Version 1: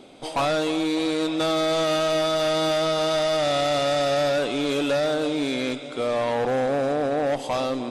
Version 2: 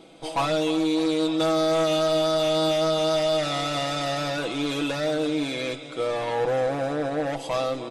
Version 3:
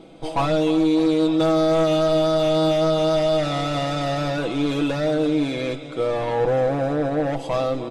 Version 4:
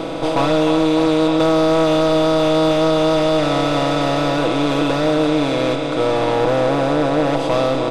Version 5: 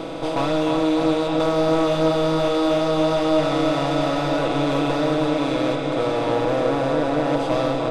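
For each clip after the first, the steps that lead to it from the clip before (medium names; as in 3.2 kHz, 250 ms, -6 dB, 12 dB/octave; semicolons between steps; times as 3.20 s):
comb 6.1 ms, depth 68%; trim -3 dB
tilt EQ -2 dB/octave; trim +2 dB
spectral levelling over time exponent 0.4
feedback echo behind a low-pass 328 ms, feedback 73%, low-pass 2 kHz, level -6.5 dB; trim -5.5 dB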